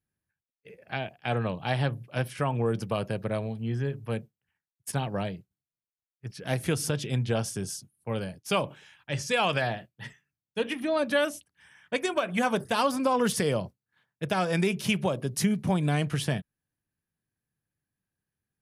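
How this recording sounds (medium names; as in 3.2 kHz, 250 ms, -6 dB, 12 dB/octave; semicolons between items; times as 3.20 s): noise floor -95 dBFS; spectral tilt -5.0 dB/octave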